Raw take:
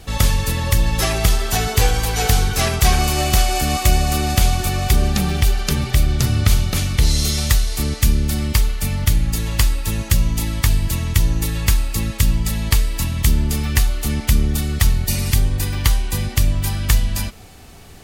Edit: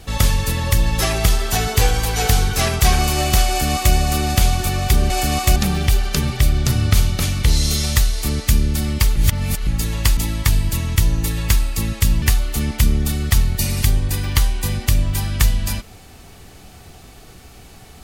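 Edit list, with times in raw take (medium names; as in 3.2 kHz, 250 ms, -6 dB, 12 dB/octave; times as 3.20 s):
3.48–3.94 s: copy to 5.10 s
8.70–9.21 s: reverse
9.71–10.35 s: delete
12.40–13.71 s: delete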